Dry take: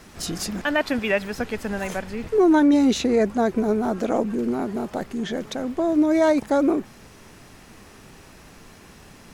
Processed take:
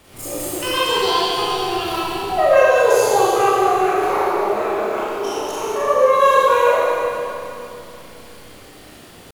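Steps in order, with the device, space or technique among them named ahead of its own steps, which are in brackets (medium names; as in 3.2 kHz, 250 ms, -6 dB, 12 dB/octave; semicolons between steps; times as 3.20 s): 0.85–1.81 s: doubling 18 ms -8 dB; chipmunk voice (pitch shift +9.5 st); Schroeder reverb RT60 2.8 s, combs from 29 ms, DRR -9 dB; trim -4 dB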